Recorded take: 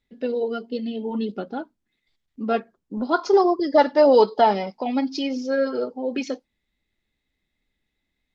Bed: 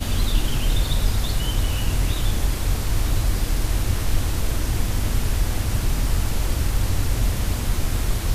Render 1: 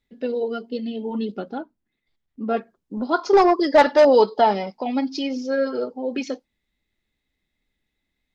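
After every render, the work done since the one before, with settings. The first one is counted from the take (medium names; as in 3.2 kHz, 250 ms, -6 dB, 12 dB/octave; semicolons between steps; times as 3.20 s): 1.58–2.57 s: treble shelf 2.5 kHz -9.5 dB; 3.33–4.05 s: overdrive pedal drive 15 dB, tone 4.8 kHz, clips at -5.5 dBFS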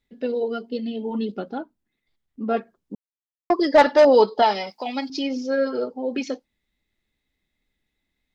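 2.95–3.50 s: mute; 4.42–5.10 s: tilt EQ +3.5 dB/octave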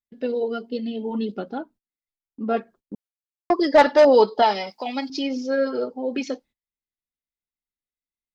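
gate -49 dBFS, range -25 dB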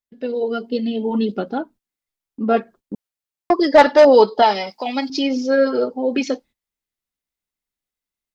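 level rider gain up to 6.5 dB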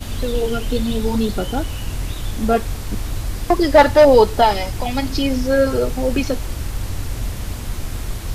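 add bed -3.5 dB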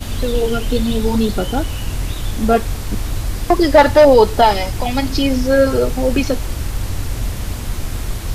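trim +3 dB; peak limiter -1 dBFS, peak gain reduction 2.5 dB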